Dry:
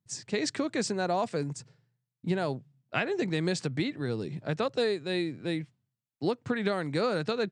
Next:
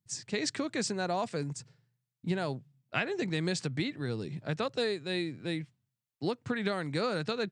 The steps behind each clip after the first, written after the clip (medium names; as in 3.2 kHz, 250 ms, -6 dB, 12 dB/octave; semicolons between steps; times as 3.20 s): peaking EQ 480 Hz -4 dB 2.8 oct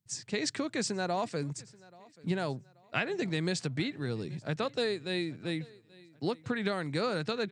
feedback delay 832 ms, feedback 39%, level -23.5 dB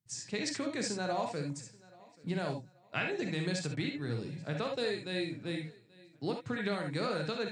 gated-style reverb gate 90 ms rising, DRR 2.5 dB; trim -4 dB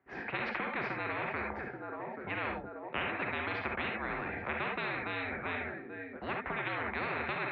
mistuned SSB -74 Hz 310–2100 Hz; small resonant body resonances 370/740 Hz, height 8 dB; spectrum-flattening compressor 10:1